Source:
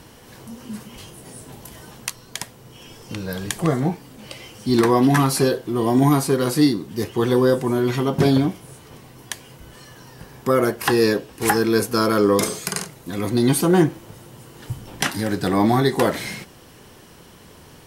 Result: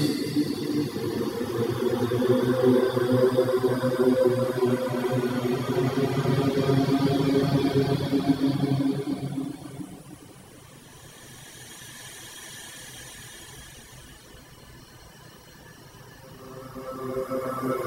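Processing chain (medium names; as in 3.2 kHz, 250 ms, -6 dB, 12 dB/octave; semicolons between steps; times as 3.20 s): Paulstretch 4.9×, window 1.00 s, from 6.75 s; reverb removal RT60 1.1 s; word length cut 12-bit, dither triangular; trim -2 dB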